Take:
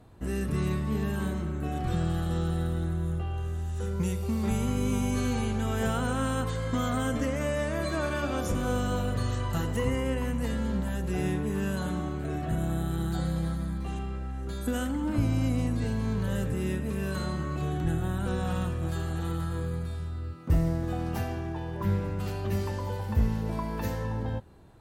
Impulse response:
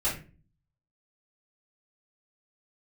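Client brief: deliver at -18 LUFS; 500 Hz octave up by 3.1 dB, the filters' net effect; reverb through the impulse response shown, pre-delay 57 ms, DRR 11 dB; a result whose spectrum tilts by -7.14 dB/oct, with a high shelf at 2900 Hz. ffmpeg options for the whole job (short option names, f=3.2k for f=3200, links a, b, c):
-filter_complex "[0:a]equalizer=f=500:t=o:g=4,highshelf=f=2.9k:g=-8.5,asplit=2[a][b];[1:a]atrim=start_sample=2205,adelay=57[c];[b][c]afir=irnorm=-1:irlink=0,volume=-19.5dB[d];[a][d]amix=inputs=2:normalize=0,volume=11.5dB"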